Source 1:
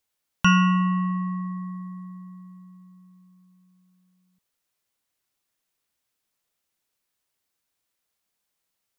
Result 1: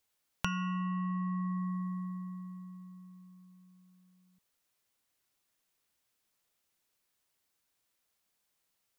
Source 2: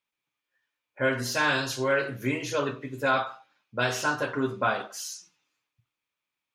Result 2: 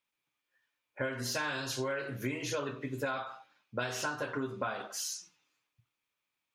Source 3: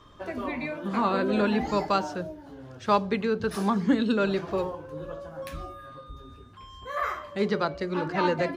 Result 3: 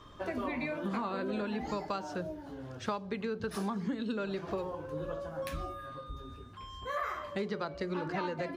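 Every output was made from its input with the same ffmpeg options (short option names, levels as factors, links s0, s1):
-af "acompressor=threshold=0.0282:ratio=16"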